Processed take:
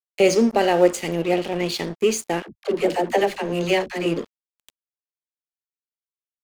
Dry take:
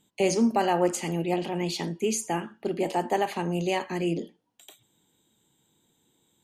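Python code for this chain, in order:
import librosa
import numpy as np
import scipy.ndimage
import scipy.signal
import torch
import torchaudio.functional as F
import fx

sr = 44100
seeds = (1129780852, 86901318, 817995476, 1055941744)

y = fx.graphic_eq(x, sr, hz=(500, 1000, 2000, 4000), db=(9, -5, 6, 5))
y = np.sign(y) * np.maximum(np.abs(y) - 10.0 ** (-36.5 / 20.0), 0.0)
y = fx.dispersion(y, sr, late='lows', ms=72.0, hz=410.0, at=(2.42, 4.06))
y = y * 10.0 ** (3.0 / 20.0)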